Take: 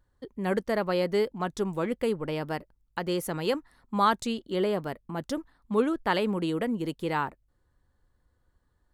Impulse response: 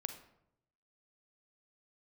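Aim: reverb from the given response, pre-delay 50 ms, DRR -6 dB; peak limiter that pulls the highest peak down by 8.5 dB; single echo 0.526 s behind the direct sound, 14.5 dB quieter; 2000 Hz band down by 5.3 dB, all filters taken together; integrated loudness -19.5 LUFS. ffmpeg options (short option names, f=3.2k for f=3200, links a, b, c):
-filter_complex "[0:a]equalizer=f=2k:t=o:g=-7,alimiter=limit=-20.5dB:level=0:latency=1,aecho=1:1:526:0.188,asplit=2[a][b];[1:a]atrim=start_sample=2205,adelay=50[c];[b][c]afir=irnorm=-1:irlink=0,volume=7.5dB[d];[a][d]amix=inputs=2:normalize=0,volume=5dB"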